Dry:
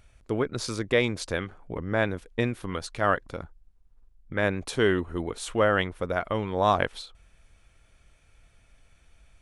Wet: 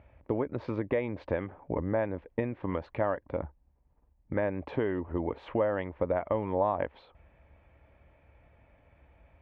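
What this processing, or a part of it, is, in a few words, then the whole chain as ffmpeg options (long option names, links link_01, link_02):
bass amplifier: -af "acompressor=threshold=-31dB:ratio=6,highpass=67,equalizer=frequency=70:width_type=q:width=4:gain=8,equalizer=frequency=290:width_type=q:width=4:gain=5,equalizer=frequency=570:width_type=q:width=4:gain=8,equalizer=frequency=900:width_type=q:width=4:gain=7,equalizer=frequency=1400:width_type=q:width=4:gain=-8,lowpass=frequency=2200:width=0.5412,lowpass=frequency=2200:width=1.3066,volume=2dB"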